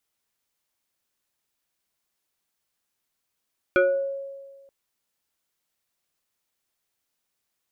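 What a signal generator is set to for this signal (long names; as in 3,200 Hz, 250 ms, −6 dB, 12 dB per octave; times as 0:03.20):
two-operator FM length 0.93 s, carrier 550 Hz, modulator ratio 1.66, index 1.5, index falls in 0.52 s exponential, decay 1.52 s, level −14 dB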